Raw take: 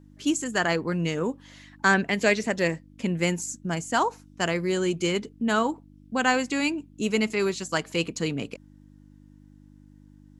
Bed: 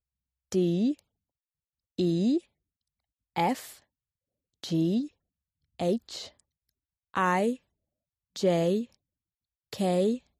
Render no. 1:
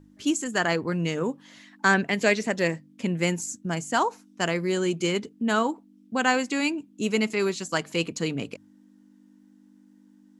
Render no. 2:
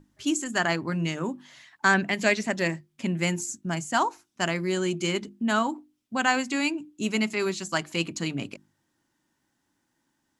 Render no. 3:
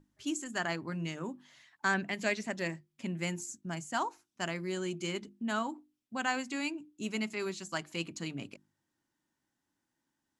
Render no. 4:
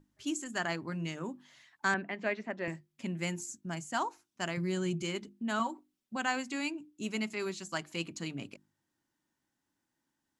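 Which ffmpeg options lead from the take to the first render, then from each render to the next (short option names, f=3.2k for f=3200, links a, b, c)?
-af "bandreject=f=50:t=h:w=4,bandreject=f=100:t=h:w=4,bandreject=f=150:t=h:w=4"
-af "equalizer=f=470:w=7:g=-13.5,bandreject=f=50:t=h:w=6,bandreject=f=100:t=h:w=6,bandreject=f=150:t=h:w=6,bandreject=f=200:t=h:w=6,bandreject=f=250:t=h:w=6,bandreject=f=300:t=h:w=6,bandreject=f=350:t=h:w=6"
-af "volume=-9dB"
-filter_complex "[0:a]asettb=1/sr,asplit=3[a][b][c];[a]atrim=end=1.944[d];[b]atrim=start=1.94:end=2.68,asetpts=PTS-STARTPTS,afade=t=in:d=0.004:c=qsin,afade=t=out:st=0.736:d=0.004:c=qsin,highpass=220,lowpass=2.1k[e];[c]atrim=start=2.676[f];[d][e]acrossfade=d=0.004:c1=hsin:c2=qsin[g];[g][f]acrossfade=d=0.004:c1=qsin:c2=hsin,asettb=1/sr,asplit=3[h][i][j];[h]atrim=end=4.574[k];[i]atrim=start=4.57:end=5.03,asetpts=PTS-STARTPTS,afade=t=in:d=0.004:c=qsin,afade=t=out:st=0.456:d=0.004:c=qsin,equalizer=f=140:t=o:w=0.77:g=13[l];[j]atrim=start=5.026[m];[k][l]acrossfade=d=0.004:c1=hsin:c2=qsin[n];[n][m]acrossfade=d=0.004:c1=qsin:c2=hsin,asettb=1/sr,asplit=3[o][p][q];[o]atrim=end=5.594[r];[p]atrim=start=5.59:end=6.16,asetpts=PTS-STARTPTS,afade=t=in:d=0.004:c=qsin,afade=t=out:st=0.566:d=0.004:c=qsin,aecho=1:1:5.3:0.78,atrim=end_sample=25137[s];[q]atrim=start=6.156[t];[r][s]acrossfade=d=0.004:c1=hsin:c2=qsin[u];[u][t]acrossfade=d=0.004:c1=qsin:c2=hsin"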